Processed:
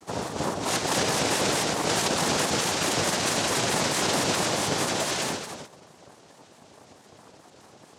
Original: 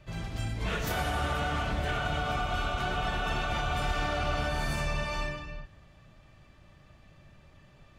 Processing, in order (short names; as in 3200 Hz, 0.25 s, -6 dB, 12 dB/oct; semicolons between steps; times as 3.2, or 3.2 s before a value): noise vocoder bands 2; bell 1600 Hz +3.5 dB 0.32 oct; shaped vibrato square 4.6 Hz, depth 160 cents; gain +6.5 dB